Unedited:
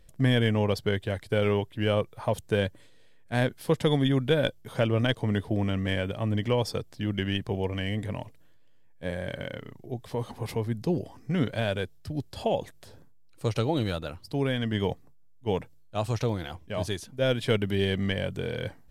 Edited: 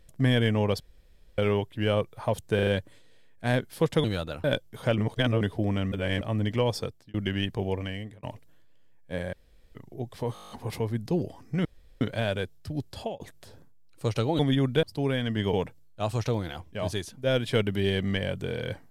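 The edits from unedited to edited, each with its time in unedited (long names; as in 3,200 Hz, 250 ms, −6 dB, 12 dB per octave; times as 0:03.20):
0:00.80–0:01.38: fill with room tone
0:02.55: stutter 0.04 s, 4 plays
0:03.92–0:04.36: swap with 0:13.79–0:14.19
0:04.90–0:05.33: reverse
0:05.84–0:06.13: reverse
0:06.71–0:07.06: fade out
0:07.67–0:08.15: fade out
0:09.25–0:09.67: fill with room tone
0:10.26: stutter 0.02 s, 9 plays
0:11.41: splice in room tone 0.36 s
0:12.35–0:12.60: fade out
0:14.89–0:15.48: remove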